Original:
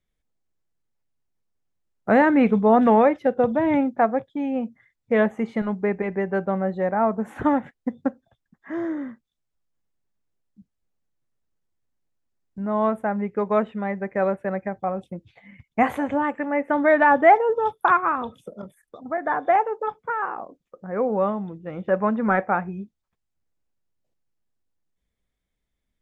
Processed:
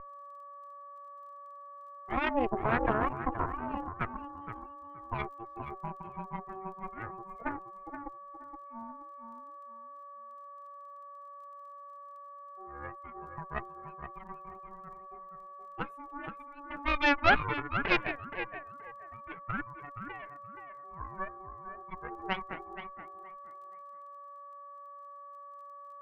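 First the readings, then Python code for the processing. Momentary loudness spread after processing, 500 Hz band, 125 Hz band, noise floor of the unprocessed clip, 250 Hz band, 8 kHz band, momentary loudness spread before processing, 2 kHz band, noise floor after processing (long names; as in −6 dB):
19 LU, −17.5 dB, −8.5 dB, −79 dBFS, −17.0 dB, can't be measured, 16 LU, −6.5 dB, −49 dBFS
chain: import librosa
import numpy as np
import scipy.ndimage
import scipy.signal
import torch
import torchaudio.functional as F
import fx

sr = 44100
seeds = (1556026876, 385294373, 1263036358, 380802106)

p1 = fx.bin_expand(x, sr, power=2.0)
p2 = p1 + fx.echo_feedback(p1, sr, ms=474, feedback_pct=25, wet_db=-7.0, dry=0)
p3 = p2 + 10.0 ** (-24.0 / 20.0) * np.sin(2.0 * np.pi * 570.0 * np.arange(len(p2)) / sr)
p4 = fx.high_shelf_res(p3, sr, hz=2300.0, db=-11.0, q=1.5)
p5 = fx.dmg_crackle(p4, sr, seeds[0], per_s=30.0, level_db=-45.0)
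p6 = fx.cheby_harmonics(p5, sr, harmonics=(3, 6, 7), levels_db=(-18, -10, -20), full_scale_db=-0.5)
y = F.gain(torch.from_numpy(p6), -8.5).numpy()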